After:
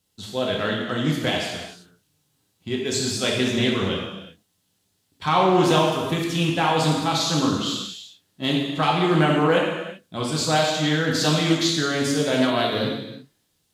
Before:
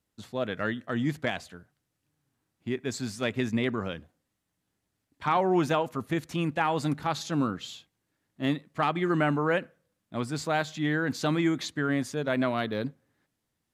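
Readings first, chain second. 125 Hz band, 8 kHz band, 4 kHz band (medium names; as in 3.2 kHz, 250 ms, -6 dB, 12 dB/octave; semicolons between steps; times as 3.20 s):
+7.5 dB, +13.5 dB, +15.0 dB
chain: resonant high shelf 2.6 kHz +6.5 dB, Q 1.5; gated-style reverb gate 410 ms falling, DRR -3 dB; loudspeaker Doppler distortion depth 0.15 ms; trim +2.5 dB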